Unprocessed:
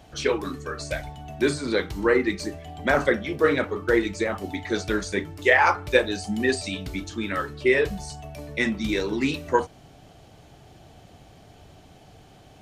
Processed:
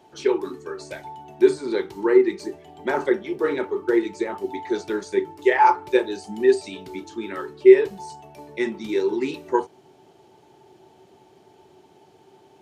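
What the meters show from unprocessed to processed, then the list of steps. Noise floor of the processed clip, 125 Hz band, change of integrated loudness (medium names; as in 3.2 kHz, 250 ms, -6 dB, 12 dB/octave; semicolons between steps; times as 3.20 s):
-55 dBFS, under -10 dB, +2.5 dB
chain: high-pass 160 Hz 12 dB/octave; small resonant body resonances 380/880 Hz, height 18 dB, ringing for 80 ms; trim -6.5 dB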